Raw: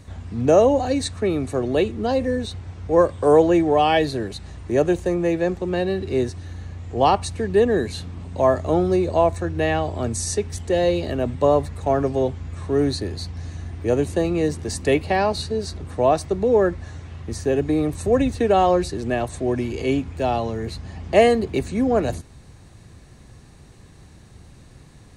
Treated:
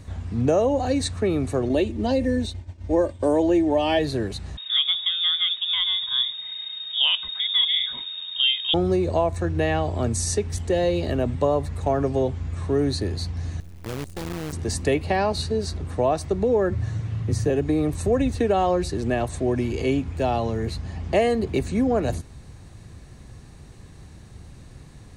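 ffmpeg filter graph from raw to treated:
-filter_complex "[0:a]asettb=1/sr,asplit=3[a][b][c];[a]atrim=end=1.694[d];[b]atrim=start=1.69:end=3.99,asetpts=PTS-STARTPTS,afade=t=in:d=0.004:c=qsin,afade=t=out:st=2.296:d=0.004:c=qsin,agate=range=-33dB:threshold=-29dB:ratio=3:release=100:detection=peak,equalizer=f=1.3k:w=2.9:g=-8.5,aecho=1:1:3.3:0.57,atrim=end_sample=101430[e];[c]atrim=start=3.986[f];[d][e]acrossfade=d=0.004:c1=hsin:c2=qsin[g];[g][f]acrossfade=d=0.004:c1=qsin:c2=hsin,asettb=1/sr,asplit=3[h][i][j];[h]atrim=end=4.574[k];[i]atrim=start=4.57:end=8.74,asetpts=PTS-STARTPTS,afade=t=in:d=0.004:c=qsin,afade=t=out:st=4.166:d=0.004:c=qsin,bandreject=f=50:t=h:w=6,bandreject=f=100:t=h:w=6,bandreject=f=150:t=h:w=6,bandreject=f=200:t=h:w=6,bandreject=f=250:t=h:w=6,bandreject=f=300:t=h:w=6,bandreject=f=350:t=h:w=6,bandreject=f=400:t=h:w=6,bandreject=f=450:t=h:w=6,lowpass=f=3.2k:t=q:w=0.5098,lowpass=f=3.2k:t=q:w=0.6013,lowpass=f=3.2k:t=q:w=0.9,lowpass=f=3.2k:t=q:w=2.563,afreqshift=-3800[l];[j]atrim=start=8.736[m];[k][l]acrossfade=d=0.004:c1=hsin:c2=qsin[n];[n][m]acrossfade=d=0.004:c1=qsin:c2=hsin,asettb=1/sr,asplit=3[o][p][q];[o]atrim=end=13.604[r];[p]atrim=start=13.6:end=14.53,asetpts=PTS-STARTPTS,afade=t=in:d=0.004:c=qsin,afade=t=out:st=0.926:d=0.004:c=qsin,equalizer=f=880:w=0.6:g=-12.5,acrusher=bits=5:dc=4:mix=0:aa=0.000001,aeval=exprs='(tanh(25.1*val(0)+0.65)-tanh(0.65))/25.1':c=same[s];[q]atrim=start=14.526[t];[r][s]acrossfade=d=0.004:c1=hsin:c2=qsin[u];[u][t]acrossfade=d=0.004:c1=qsin:c2=hsin,asettb=1/sr,asplit=3[v][w][x];[v]atrim=end=16.704[y];[w]atrim=start=16.7:end=17.5,asetpts=PTS-STARTPTS,afade=t=in:d=0.004:c=qsin,afade=t=out:st=0.796:d=0.004:c=qsin,lowshelf=f=91:g=11,bandreject=f=800:w=19,afreqshift=26[z];[x]atrim=start=17.496[aa];[y][z]acrossfade=d=0.004:c1=hsin:c2=qsin[ab];[ab][aa]acrossfade=d=0.004:c1=qsin:c2=hsin,acompressor=threshold=-19dB:ratio=2.5,lowshelf=f=140:g=4"

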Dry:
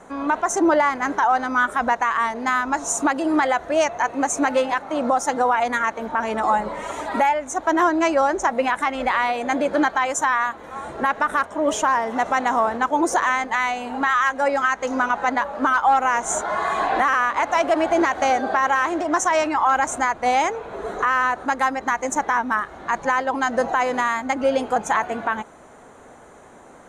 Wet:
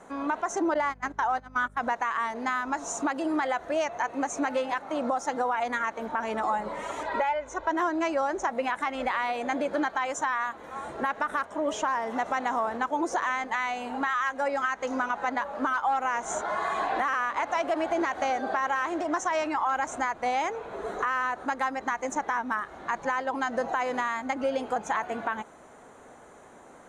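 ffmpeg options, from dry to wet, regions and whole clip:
-filter_complex "[0:a]asettb=1/sr,asplit=3[a][b][c];[a]atrim=end=0.744[d];[b]atrim=start=0.74:end=1.83,asetpts=PTS-STARTPTS,afade=t=in:d=0.004:c=qsin,afade=t=out:st=1.086:d=0.004:c=qsin,agate=range=-23dB:threshold=-23dB:ratio=16:release=100:detection=peak,aeval=exprs='val(0)+0.00794*(sin(2*PI*50*n/s)+sin(2*PI*2*50*n/s)/2+sin(2*PI*3*50*n/s)/3+sin(2*PI*4*50*n/s)/4+sin(2*PI*5*50*n/s)/5)':c=same[e];[c]atrim=start=1.826[f];[d][e]acrossfade=d=0.004:c1=hsin:c2=qsin[g];[g][f]acrossfade=d=0.004:c1=qsin:c2=hsin,asettb=1/sr,asplit=3[h][i][j];[h]atrim=end=7.034[k];[i]atrim=start=7.03:end=7.71,asetpts=PTS-STARTPTS,afade=t=in:d=0.004:c=qsin,afade=t=out:st=0.676:d=0.004:c=qsin,lowpass=4.5k,aecho=1:1:2:0.61,atrim=end_sample=29988,asubboost=boost=9:cutoff=98[l];[j]atrim=start=7.706[m];[k][l]acrossfade=d=0.004:c1=hsin:c2=qsin[n];[n][m]acrossfade=d=0.004:c1=qsin:c2=hsin,acrossover=split=6600[o][p];[p]acompressor=threshold=-48dB:ratio=4:attack=1:release=60[q];[o][q]amix=inputs=2:normalize=0,lowshelf=f=120:g=-4.5,acompressor=threshold=-22dB:ratio=2,volume=-4.5dB"

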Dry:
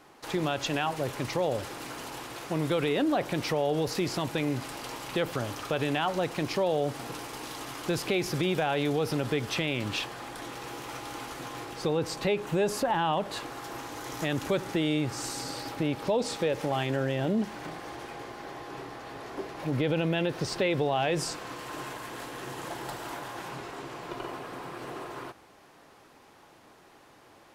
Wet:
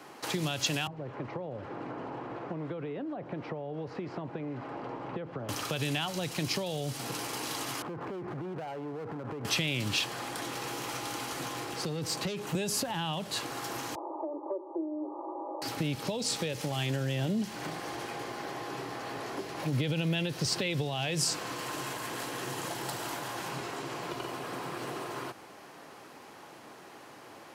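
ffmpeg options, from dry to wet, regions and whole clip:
-filter_complex "[0:a]asettb=1/sr,asplit=3[a][b][c];[a]atrim=end=0.874[d];[b]atrim=start=0.87:end=5.49,asetpts=PTS-STARTPTS,afade=t=in:d=0.004:c=qsin,afade=t=out:st=4.616:d=0.004:c=qsin,lowpass=1.5k,acrossover=split=330|900[e][f][g];[e]acompressor=threshold=-43dB:ratio=4[h];[f]acompressor=threshold=-42dB:ratio=4[i];[g]acompressor=threshold=-53dB:ratio=4[j];[h][i][j]amix=inputs=3:normalize=0[k];[c]atrim=start=5.486[l];[d][k]acrossfade=d=0.004:c1=hsin:c2=qsin[m];[m][l]acrossfade=d=0.004:c1=qsin:c2=hsin,asettb=1/sr,asplit=3[n][o][p];[n]atrim=end=7.824[q];[o]atrim=start=7.82:end=9.45,asetpts=PTS-STARTPTS,afade=t=in:d=0.004:c=qsin,afade=t=out:st=1.626:d=0.004:c=qsin,lowpass=f=1.5k:w=0.5412,lowpass=f=1.5k:w=1.3066,acompressor=threshold=-35dB:ratio=10:attack=3.2:release=140:knee=1:detection=peak,asoftclip=type=hard:threshold=-39dB[r];[p]atrim=start=9.446[s];[q][r]acrossfade=d=0.004:c1=hsin:c2=qsin[t];[t][s]acrossfade=d=0.004:c1=qsin:c2=hsin,asettb=1/sr,asplit=3[u][v][w];[u]atrim=end=11.544[x];[v]atrim=start=11.54:end=12.55,asetpts=PTS-STARTPTS,afade=t=in:d=0.004:c=qsin,afade=t=out:st=1.006:d=0.004:c=qsin,acrossover=split=330|3000[y][z][aa];[z]acompressor=threshold=-33dB:ratio=2.5:attack=3.2:release=140:knee=2.83:detection=peak[ab];[y][ab][aa]amix=inputs=3:normalize=0,aeval=exprs='(tanh(25.1*val(0)+0.3)-tanh(0.3))/25.1':c=same[ac];[w]atrim=start=12.546[ad];[x][ac]acrossfade=d=0.004:c1=hsin:c2=qsin[ae];[ae][ad]acrossfade=d=0.004:c1=qsin:c2=hsin,asettb=1/sr,asplit=3[af][ag][ah];[af]atrim=end=13.954[ai];[ag]atrim=start=13.95:end=15.62,asetpts=PTS-STARTPTS,afade=t=in:d=0.004:c=qsin,afade=t=out:st=1.666:d=0.004:c=qsin,asuperpass=centerf=590:order=20:qfactor=0.74,bandreject=f=50:t=h:w=6,bandreject=f=100:t=h:w=6,bandreject=f=150:t=h:w=6,bandreject=f=200:t=h:w=6,bandreject=f=250:t=h:w=6,bandreject=f=300:t=h:w=6,bandreject=f=350:t=h:w=6,bandreject=f=400:t=h:w=6,bandreject=f=450:t=h:w=6,aecho=1:1:3.3:0.95,atrim=end_sample=73647[aj];[ah]atrim=start=15.616[ak];[ai][aj]acrossfade=d=0.004:c1=hsin:c2=qsin[al];[al][ak]acrossfade=d=0.004:c1=qsin:c2=hsin,highpass=120,bandreject=f=3.6k:w=26,acrossover=split=160|3000[am][an][ao];[an]acompressor=threshold=-42dB:ratio=5[ap];[am][ap][ao]amix=inputs=3:normalize=0,volume=6dB"

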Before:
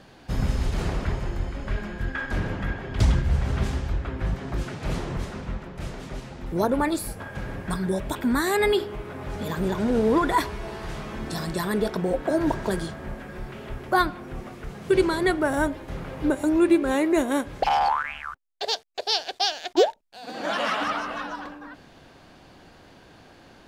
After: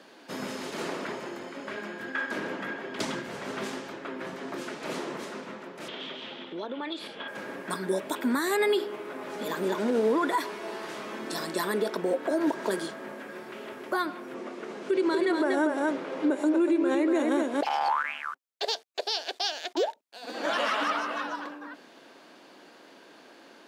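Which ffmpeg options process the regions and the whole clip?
-filter_complex "[0:a]asettb=1/sr,asplit=3[a][b][c];[a]atrim=end=5.884[d];[b]atrim=start=5.88:end=7.28,asetpts=PTS-STARTPTS,afade=t=in:d=0.004:c=qsin,afade=t=out:st=1.396:d=0.004:c=qsin,lowpass=f=3.3k:t=q:w=7.5,acompressor=threshold=-31dB:ratio=6:attack=3.2:release=140:knee=1:detection=peak[e];[c]atrim=start=7.276[f];[d][e]acrossfade=d=0.004:c1=hsin:c2=qsin[g];[g][f]acrossfade=d=0.004:c1=qsin:c2=hsin,asettb=1/sr,asplit=3[h][i][j];[h]atrim=end=14.344[k];[i]atrim=start=14.34:end=17.61,asetpts=PTS-STARTPTS,afade=t=in:d=0.004:c=qsin,afade=t=out:st=3.266:d=0.004:c=qsin,highpass=250,lowpass=7.6k,lowshelf=f=480:g=7.5,aecho=1:1:239:0.531,atrim=end_sample=144207[l];[j]atrim=start=17.606[m];[k][l]acrossfade=d=0.004:c1=hsin:c2=qsin[n];[n][m]acrossfade=d=0.004:c1=qsin:c2=hsin,highpass=f=250:w=0.5412,highpass=f=250:w=1.3066,bandreject=f=760:w=12,alimiter=limit=-17.5dB:level=0:latency=1:release=106"

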